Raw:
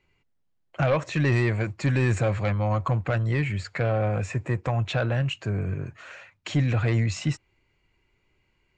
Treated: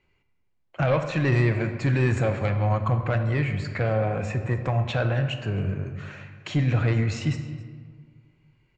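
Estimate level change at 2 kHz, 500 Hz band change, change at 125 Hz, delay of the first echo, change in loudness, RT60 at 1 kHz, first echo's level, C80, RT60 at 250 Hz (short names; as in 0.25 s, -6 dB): 0.0 dB, +1.0 dB, +1.0 dB, 0.268 s, +0.5 dB, 1.6 s, -20.5 dB, 9.5 dB, 2.0 s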